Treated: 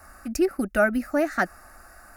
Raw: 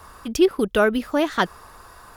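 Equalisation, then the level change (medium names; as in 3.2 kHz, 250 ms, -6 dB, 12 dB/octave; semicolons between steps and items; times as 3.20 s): peaking EQ 320 Hz -3 dB 0.53 oct; static phaser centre 670 Hz, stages 8; 0.0 dB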